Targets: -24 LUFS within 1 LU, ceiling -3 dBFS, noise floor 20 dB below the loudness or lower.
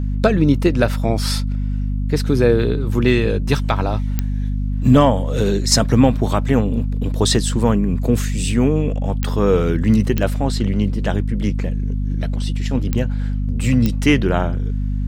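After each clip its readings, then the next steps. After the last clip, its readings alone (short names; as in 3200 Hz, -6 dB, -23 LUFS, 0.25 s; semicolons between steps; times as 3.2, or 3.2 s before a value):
clicks 5; hum 50 Hz; harmonics up to 250 Hz; hum level -18 dBFS; loudness -18.5 LUFS; peak -1.5 dBFS; loudness target -24.0 LUFS
-> de-click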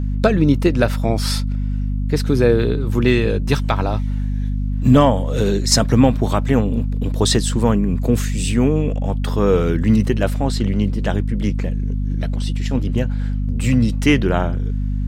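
clicks 0; hum 50 Hz; harmonics up to 250 Hz; hum level -18 dBFS
-> de-hum 50 Hz, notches 5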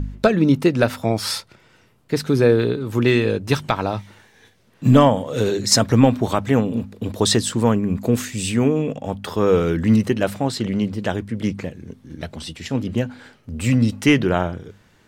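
hum none; loudness -19.5 LUFS; peak -1.5 dBFS; loudness target -24.0 LUFS
-> gain -4.5 dB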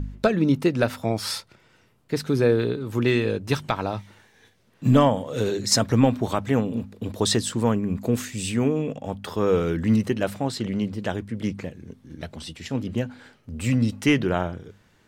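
loudness -24.0 LUFS; peak -6.0 dBFS; noise floor -60 dBFS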